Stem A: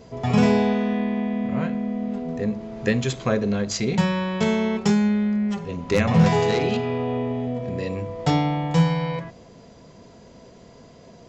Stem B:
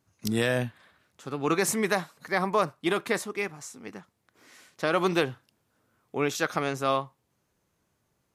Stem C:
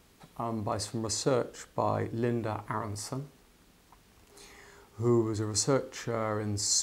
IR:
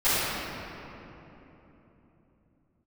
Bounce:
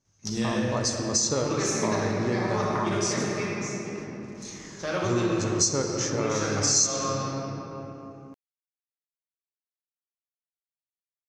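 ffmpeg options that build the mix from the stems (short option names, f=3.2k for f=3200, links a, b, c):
-filter_complex "[1:a]lowshelf=f=290:g=7,volume=-11.5dB,asplit=2[a][b];[b]volume=-9dB[c];[2:a]agate=range=-22dB:threshold=-57dB:ratio=16:detection=peak,bandreject=f=740:w=12,adelay=50,volume=2.5dB,asplit=2[d][e];[e]volume=-21.5dB[f];[3:a]atrim=start_sample=2205[g];[c][f]amix=inputs=2:normalize=0[h];[h][g]afir=irnorm=-1:irlink=0[i];[a][d][i]amix=inputs=3:normalize=0,lowpass=f=6.1k:t=q:w=6,acompressor=threshold=-23dB:ratio=2.5"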